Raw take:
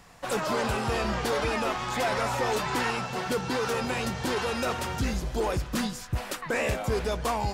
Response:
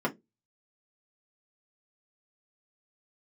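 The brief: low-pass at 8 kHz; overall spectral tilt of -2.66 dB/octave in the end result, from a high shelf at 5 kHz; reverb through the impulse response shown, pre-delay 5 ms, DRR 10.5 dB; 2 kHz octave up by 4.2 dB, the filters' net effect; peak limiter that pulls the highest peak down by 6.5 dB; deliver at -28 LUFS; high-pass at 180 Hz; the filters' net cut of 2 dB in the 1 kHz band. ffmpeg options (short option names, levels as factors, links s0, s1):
-filter_complex "[0:a]highpass=180,lowpass=8000,equalizer=f=1000:t=o:g=-4.5,equalizer=f=2000:t=o:g=8,highshelf=f=5000:g=-8,alimiter=limit=0.0841:level=0:latency=1,asplit=2[s0][s1];[1:a]atrim=start_sample=2205,adelay=5[s2];[s1][s2]afir=irnorm=-1:irlink=0,volume=0.106[s3];[s0][s3]amix=inputs=2:normalize=0,volume=1.26"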